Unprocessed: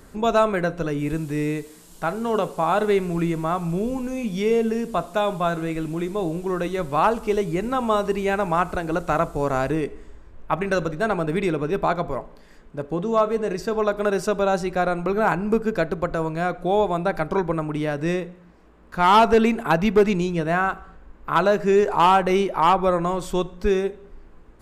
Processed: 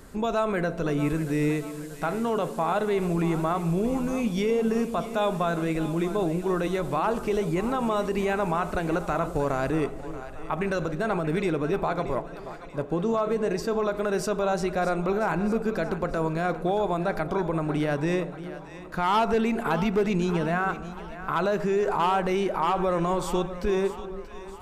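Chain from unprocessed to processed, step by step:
brickwall limiter −17 dBFS, peak gain reduction 8 dB
echo with a time of its own for lows and highs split 600 Hz, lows 343 ms, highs 632 ms, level −13 dB

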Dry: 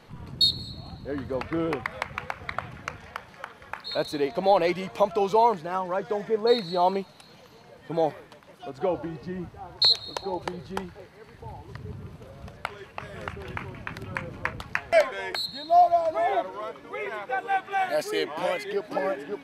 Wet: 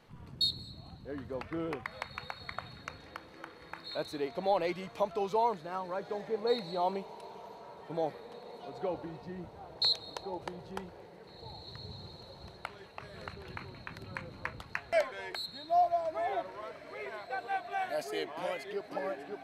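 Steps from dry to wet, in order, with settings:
0:16.94–0:17.37: downward expander −32 dBFS
feedback delay with all-pass diffusion 1,970 ms, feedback 48%, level −16 dB
level −9 dB

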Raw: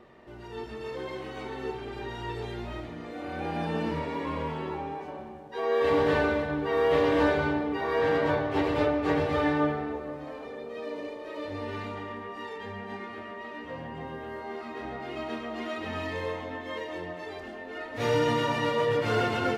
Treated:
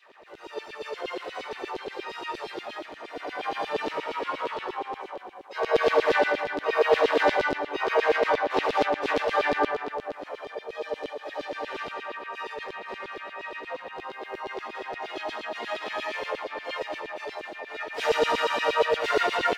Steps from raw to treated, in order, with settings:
auto-filter high-pass saw down 8.5 Hz 340–3,500 Hz
pitch-shifted copies added +5 semitones −5 dB

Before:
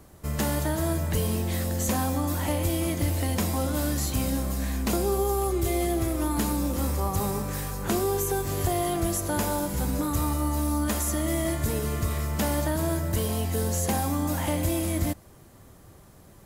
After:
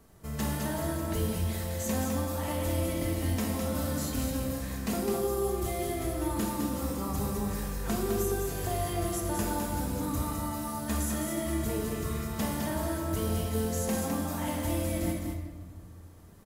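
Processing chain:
0:01.32–0:01.85: parametric band 220 Hz −12.5 dB
single-tap delay 208 ms −5.5 dB
rectangular room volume 1,400 cubic metres, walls mixed, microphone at 1.6 metres
level −8 dB

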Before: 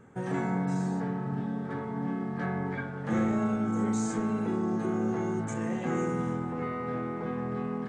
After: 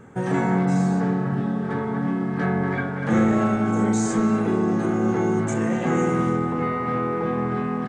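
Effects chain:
far-end echo of a speakerphone 240 ms, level −6 dB
level +8.5 dB

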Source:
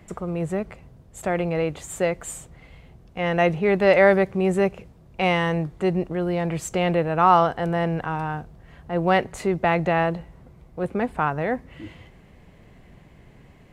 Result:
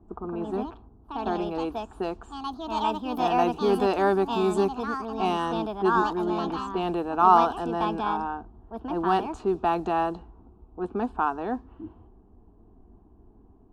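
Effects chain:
low-pass that shuts in the quiet parts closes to 610 Hz, open at −17 dBFS
delay with pitch and tempo change per echo 155 ms, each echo +4 semitones, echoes 2, each echo −6 dB
phaser with its sweep stopped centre 550 Hz, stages 6

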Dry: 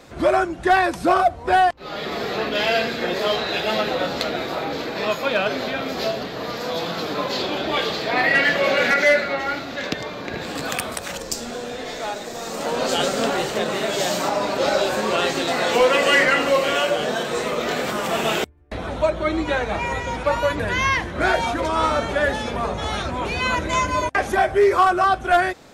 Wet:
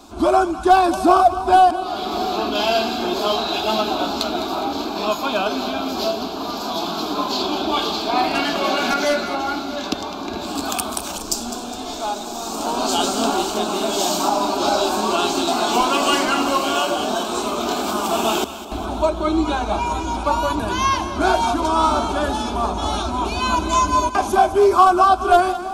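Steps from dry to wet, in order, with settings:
phaser with its sweep stopped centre 510 Hz, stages 6
echo with a time of its own for lows and highs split 800 Hz, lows 663 ms, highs 206 ms, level −12.5 dB
level +5.5 dB

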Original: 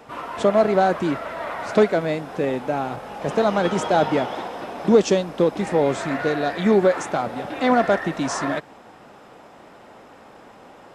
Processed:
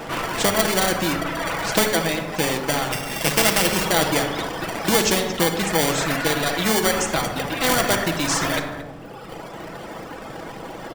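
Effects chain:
0:02.92–0:03.85: samples sorted by size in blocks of 16 samples
single-tap delay 226 ms −13 dB
in parallel at −6 dB: sample-rate reduction 1,300 Hz, jitter 0%
on the sum: reverb reduction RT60 1.5 s
on a send at −5.5 dB: convolution reverb RT60 0.80 s, pre-delay 6 ms
on the sum: every bin compressed towards the loudest bin 2 to 1
level −1 dB

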